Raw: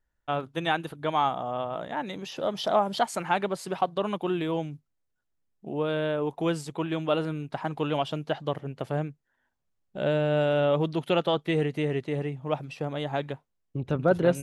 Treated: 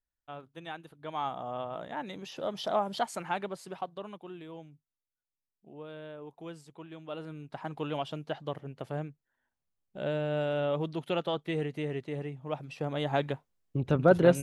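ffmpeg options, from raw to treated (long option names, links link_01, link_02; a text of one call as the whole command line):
ffmpeg -i in.wav -af "volume=12dB,afade=type=in:start_time=0.96:duration=0.52:silence=0.334965,afade=type=out:start_time=3.05:duration=1.19:silence=0.281838,afade=type=in:start_time=7.03:duration=0.7:silence=0.316228,afade=type=in:start_time=12.56:duration=0.6:silence=0.421697" out.wav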